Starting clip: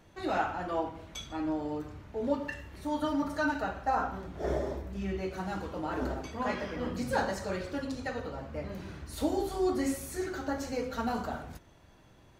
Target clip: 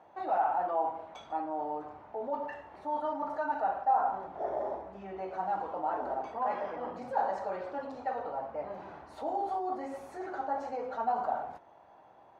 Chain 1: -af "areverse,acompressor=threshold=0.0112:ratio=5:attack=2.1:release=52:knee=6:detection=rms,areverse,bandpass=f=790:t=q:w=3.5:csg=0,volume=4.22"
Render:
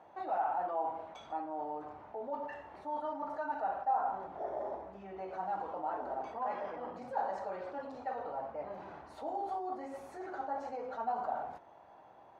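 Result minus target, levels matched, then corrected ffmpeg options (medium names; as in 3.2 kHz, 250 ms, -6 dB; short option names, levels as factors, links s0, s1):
compression: peak gain reduction +5 dB
-af "areverse,acompressor=threshold=0.0224:ratio=5:attack=2.1:release=52:knee=6:detection=rms,areverse,bandpass=f=790:t=q:w=3.5:csg=0,volume=4.22"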